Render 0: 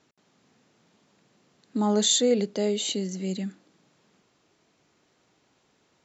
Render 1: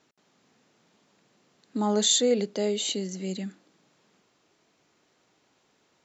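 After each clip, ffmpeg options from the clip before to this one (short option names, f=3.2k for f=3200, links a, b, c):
-af "lowshelf=f=170:g=-6.5"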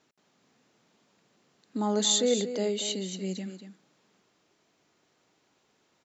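-af "aecho=1:1:235:0.299,volume=-2.5dB"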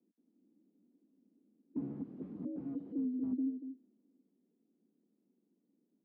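-af "afreqshift=69,aeval=exprs='(mod(21.1*val(0)+1,2)-1)/21.1':c=same,asuperpass=centerf=230:order=4:qfactor=1.8,volume=3.5dB"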